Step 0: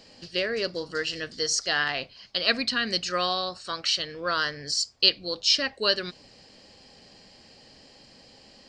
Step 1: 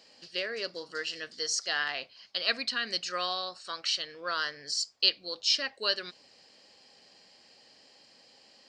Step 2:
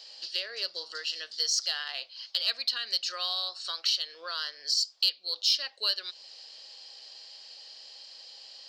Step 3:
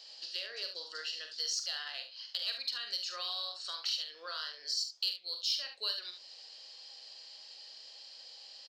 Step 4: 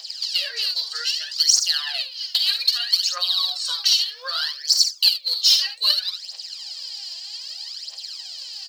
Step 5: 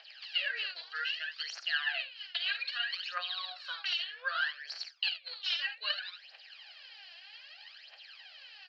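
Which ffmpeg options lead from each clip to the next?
-af "highpass=f=560:p=1,volume=-4.5dB"
-filter_complex "[0:a]acrossover=split=450 4800:gain=0.0708 1 0.0794[a][b][c];[a][b][c]amix=inputs=3:normalize=0,acompressor=threshold=-45dB:ratio=2,aexciter=amount=2.5:drive=9.7:freq=3.2k,volume=2.5dB"
-filter_complex "[0:a]asplit=2[a][b];[b]acompressor=threshold=-36dB:ratio=6,volume=-0.5dB[c];[a][c]amix=inputs=2:normalize=0,flanger=delay=6.8:depth=3.6:regen=86:speed=1.6:shape=triangular,aecho=1:1:45|72:0.398|0.316,volume=-5.5dB"
-af "crystalizer=i=4:c=0,aphaser=in_gain=1:out_gain=1:delay=3:decay=0.72:speed=0.63:type=triangular,highpass=f=600:w=0.5412,highpass=f=600:w=1.3066,volume=4.5dB"
-af "highpass=400,equalizer=f=500:t=q:w=4:g=-6,equalizer=f=1k:t=q:w=4:g=-8,equalizer=f=1.6k:t=q:w=4:g=7,equalizer=f=2.6k:t=q:w=4:g=5,lowpass=f=2.6k:w=0.5412,lowpass=f=2.6k:w=1.3066,volume=-3.5dB"

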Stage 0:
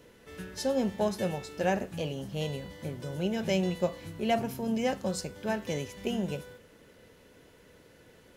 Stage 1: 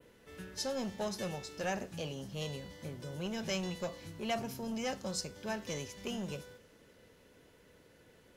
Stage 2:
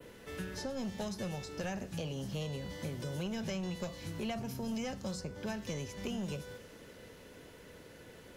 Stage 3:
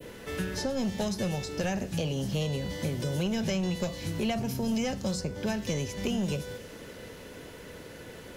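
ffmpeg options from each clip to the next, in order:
-filter_complex "[0:a]adynamicequalizer=threshold=0.00178:dfrequency=5500:dqfactor=1.3:tfrequency=5500:tqfactor=1.3:attack=5:release=100:ratio=0.375:range=3.5:mode=boostabove:tftype=bell,acrossover=split=840|1400[a][b][c];[a]asoftclip=type=tanh:threshold=-29dB[d];[d][b][c]amix=inputs=3:normalize=0,volume=-5dB"
-filter_complex "[0:a]acrossover=split=190|2000[a][b][c];[a]acompressor=threshold=-49dB:ratio=4[d];[b]acompressor=threshold=-50dB:ratio=4[e];[c]acompressor=threshold=-58dB:ratio=4[f];[d][e][f]amix=inputs=3:normalize=0,volume=8.5dB"
-af "adynamicequalizer=threshold=0.00126:dfrequency=1200:dqfactor=1.4:tfrequency=1200:tqfactor=1.4:attack=5:release=100:ratio=0.375:range=2:mode=cutabove:tftype=bell,volume=8.5dB"

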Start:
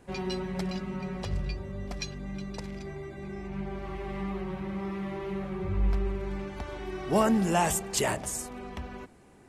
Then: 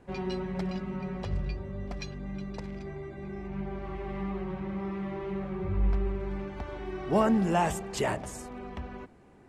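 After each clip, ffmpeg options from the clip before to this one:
-af "lowpass=f=2.3k:p=1"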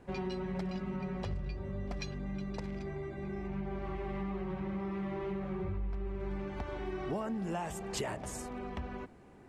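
-af "acompressor=threshold=-33dB:ratio=10"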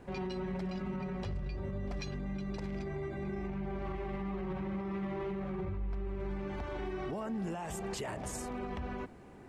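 -af "alimiter=level_in=10dB:limit=-24dB:level=0:latency=1:release=38,volume=-10dB,volume=3.5dB"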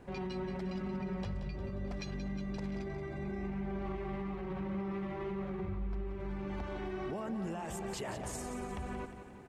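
-af "aecho=1:1:178|356|534|712|890|1068:0.316|0.168|0.0888|0.0471|0.025|0.0132,volume=-1.5dB"

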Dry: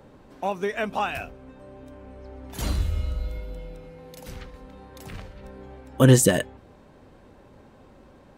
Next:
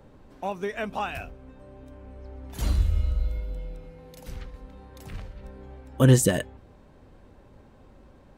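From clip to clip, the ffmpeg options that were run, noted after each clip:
-af "lowshelf=f=87:g=10,volume=-4dB"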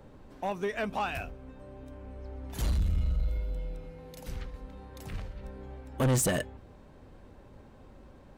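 -af "asoftclip=type=tanh:threshold=-22.5dB"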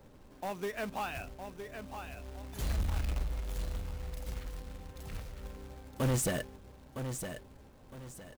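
-af "aecho=1:1:961|1922|2883|3844:0.398|0.127|0.0408|0.013,acrusher=bits=3:mode=log:mix=0:aa=0.000001,volume=-5dB"

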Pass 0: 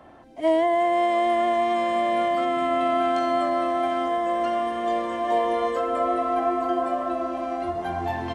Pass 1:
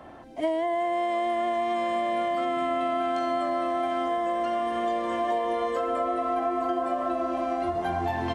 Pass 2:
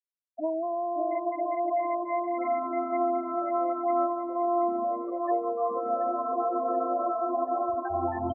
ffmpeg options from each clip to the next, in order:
-af "acompressor=threshold=-27dB:ratio=6,volume=3dB"
-filter_complex "[0:a]asplit=2[a][b];[b]aecho=0:1:560|952|1226|1418|1553:0.631|0.398|0.251|0.158|0.1[c];[a][c]amix=inputs=2:normalize=0,afftfilt=real='re*gte(hypot(re,im),0.126)':imag='im*gte(hypot(re,im),0.126)':win_size=1024:overlap=0.75,asplit=2[d][e];[e]adelay=730,lowpass=f=3k:p=1,volume=-12.5dB,asplit=2[f][g];[g]adelay=730,lowpass=f=3k:p=1,volume=0.55,asplit=2[h][i];[i]adelay=730,lowpass=f=3k:p=1,volume=0.55,asplit=2[j][k];[k]adelay=730,lowpass=f=3k:p=1,volume=0.55,asplit=2[l][m];[m]adelay=730,lowpass=f=3k:p=1,volume=0.55,asplit=2[n][o];[o]adelay=730,lowpass=f=3k:p=1,volume=0.55[p];[f][h][j][l][n][p]amix=inputs=6:normalize=0[q];[d][q]amix=inputs=2:normalize=0,volume=-3dB"

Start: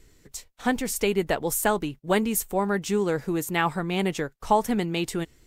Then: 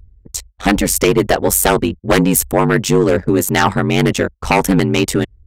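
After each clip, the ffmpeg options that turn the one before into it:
-af "aeval=exprs='0.398*sin(PI/2*2.82*val(0)/0.398)':c=same,anlmdn=63.1,aeval=exprs='val(0)*sin(2*PI*47*n/s)':c=same,volume=4dB"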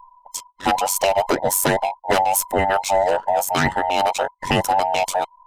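-af "afftfilt=real='real(if(between(b,1,1008),(2*floor((b-1)/48)+1)*48-b,b),0)':imag='imag(if(between(b,1,1008),(2*floor((b-1)/48)+1)*48-b,b),0)*if(between(b,1,1008),-1,1)':win_size=2048:overlap=0.75,volume=-5.5dB"

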